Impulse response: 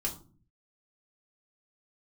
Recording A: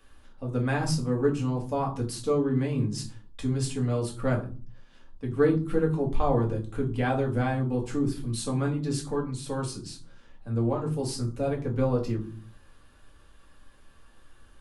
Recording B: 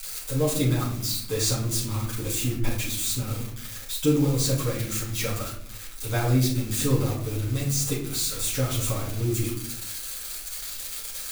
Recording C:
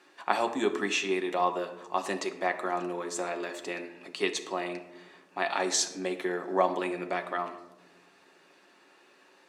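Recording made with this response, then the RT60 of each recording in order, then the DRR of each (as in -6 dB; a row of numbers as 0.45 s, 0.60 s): A; 0.40 s, 0.65 s, 1.1 s; -2.0 dB, -7.0 dB, 4.5 dB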